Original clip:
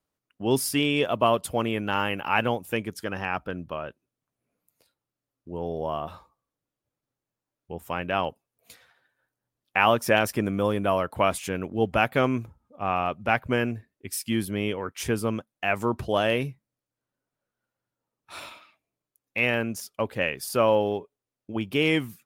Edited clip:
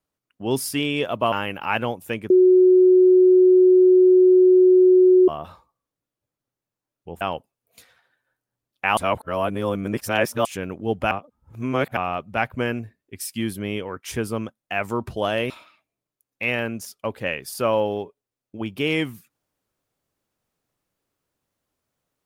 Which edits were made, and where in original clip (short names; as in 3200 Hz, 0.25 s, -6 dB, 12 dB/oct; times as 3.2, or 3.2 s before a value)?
1.32–1.95 cut
2.93–5.91 bleep 368 Hz -10 dBFS
7.84–8.13 cut
9.89–11.37 reverse
12.03–12.89 reverse
16.42–18.45 cut